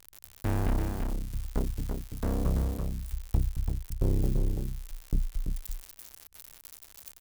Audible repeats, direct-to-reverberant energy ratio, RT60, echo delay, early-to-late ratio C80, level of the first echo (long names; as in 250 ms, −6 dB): 1, no reverb audible, no reverb audible, 336 ms, no reverb audible, −5.0 dB